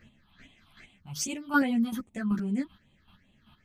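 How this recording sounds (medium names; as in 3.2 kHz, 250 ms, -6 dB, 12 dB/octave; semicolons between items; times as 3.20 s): phasing stages 6, 2.5 Hz, lowest notch 490–1500 Hz; chopped level 2.6 Hz, depth 60%, duty 20%; a shimmering, thickened sound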